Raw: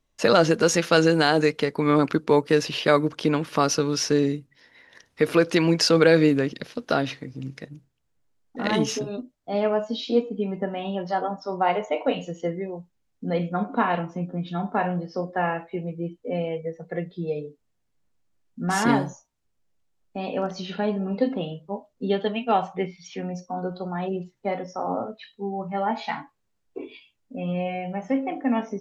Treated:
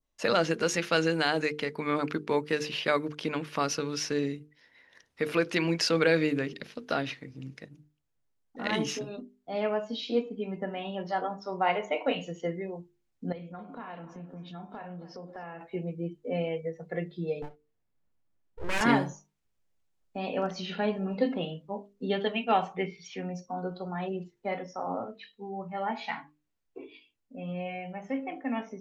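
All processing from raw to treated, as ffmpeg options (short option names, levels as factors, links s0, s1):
-filter_complex "[0:a]asettb=1/sr,asplit=3[s0][s1][s2];[s0]atrim=end=13.324[s3];[s1]atrim=start=13.32:end=15.61,asetpts=PTS-STARTPTS,afade=t=in:d=0.004:c=qsin,afade=t=out:st=2.286:d=0.004:c=qsin,acompressor=threshold=0.0141:ratio=4:attack=3.2:release=140:knee=1:detection=peak,asplit=2[s4][s5];[s5]adelay=269,lowpass=f=3500:p=1,volume=0.168,asplit=2[s6][s7];[s7]adelay=269,lowpass=f=3500:p=1,volume=0.36,asplit=2[s8][s9];[s9]adelay=269,lowpass=f=3500:p=1,volume=0.36[s10];[s4][s6][s8][s10]amix=inputs=4:normalize=0,atrim=end_sample=100989[s11];[s2]atrim=start=15.606[s12];[s3][s11]acrossfade=d=0.004:c1=hsin:c2=qsin[s13];[s13][s12]acrossfade=d=0.004:c1=qsin:c2=hsin,asettb=1/sr,asplit=3[s14][s15][s16];[s14]atrim=end=17.424[s17];[s15]atrim=start=17.42:end=18.81,asetpts=PTS-STARTPTS,afade=t=in:d=0.004:c=qsin,afade=t=out:st=1.386:d=0.004:c=qsin,highshelf=f=3400:g=-11,aeval=exprs='abs(val(0))':c=same[s18];[s16]atrim=start=18.806[s19];[s17][s18]acrossfade=d=0.004:c1=hsin:c2=qsin[s20];[s20][s19]acrossfade=d=0.004:c1=qsin:c2=hsin,adynamicequalizer=threshold=0.00891:dfrequency=2300:dqfactor=1.2:tfrequency=2300:tqfactor=1.2:attack=5:release=100:ratio=0.375:range=3:mode=boostabove:tftype=bell,bandreject=f=50:t=h:w=6,bandreject=f=100:t=h:w=6,bandreject=f=150:t=h:w=6,bandreject=f=200:t=h:w=6,bandreject=f=250:t=h:w=6,bandreject=f=300:t=h:w=6,bandreject=f=350:t=h:w=6,bandreject=f=400:t=h:w=6,bandreject=f=450:t=h:w=6,dynaudnorm=f=650:g=17:m=3.76,volume=0.376"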